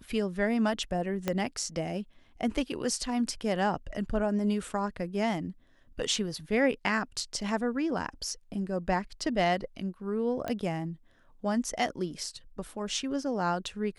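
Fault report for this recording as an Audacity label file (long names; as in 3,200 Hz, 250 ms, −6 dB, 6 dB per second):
1.280000	1.280000	click −14 dBFS
10.480000	10.480000	click −19 dBFS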